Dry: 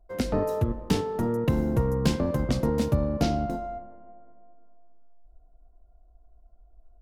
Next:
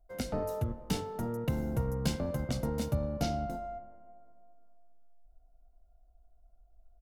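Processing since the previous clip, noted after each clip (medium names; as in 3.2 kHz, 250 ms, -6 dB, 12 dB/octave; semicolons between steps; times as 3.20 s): treble shelf 6.2 kHz +7.5 dB; hum notches 50/100 Hz; comb 1.4 ms, depth 34%; trim -8 dB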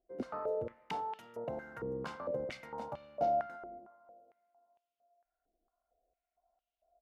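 step-sequenced band-pass 4.4 Hz 360–2900 Hz; trim +7.5 dB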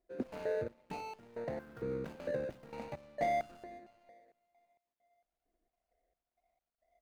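median filter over 41 samples; trim +2 dB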